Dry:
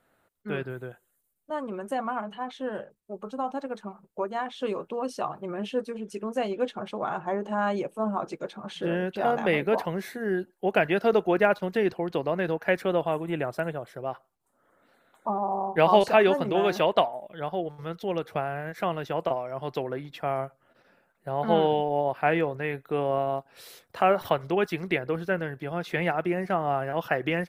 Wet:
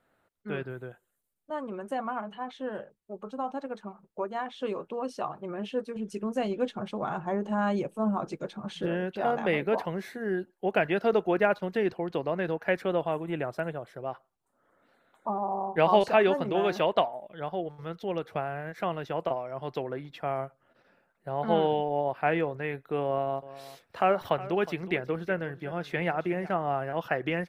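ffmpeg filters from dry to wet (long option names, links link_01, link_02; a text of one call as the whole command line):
ffmpeg -i in.wav -filter_complex "[0:a]asettb=1/sr,asplit=3[link_01][link_02][link_03];[link_01]atrim=end=5.964[link_04];[link_02]atrim=start=5.96:end=8.86,asetpts=PTS-STARTPTS,afade=type=in:duration=0.004:curve=qsin,afade=type=out:start_time=2.896:duration=0.004:curve=qsin,bass=frequency=250:gain=8,treble=frequency=4000:gain=5[link_05];[link_03]atrim=start=8.856[link_06];[link_04][link_05]acrossfade=duration=0.004:curve1=hsin:curve2=qsin[link_07];[link_07][link_06]acrossfade=duration=0.004:curve1=qsin:curve2=hsin,asettb=1/sr,asplit=3[link_08][link_09][link_10];[link_08]atrim=end=23.064[link_11];[link_09]atrim=start=23.06:end=26.57,asetpts=PTS-STARTPTS,afade=type=in:duration=0.004:curve=qsin,afade=type=out:start_time=3.506:duration=0.004:curve=qsin,aecho=1:1:363:0.15,atrim=end_sample=154791[link_12];[link_10]atrim=start=26.566[link_13];[link_11][link_12]acrossfade=duration=0.004:curve1=hsin:curve2=qsin[link_14];[link_14][link_13]acrossfade=duration=0.004:curve1=qsin:curve2=hsin,highshelf=frequency=7800:gain=-8,volume=-2.5dB" out.wav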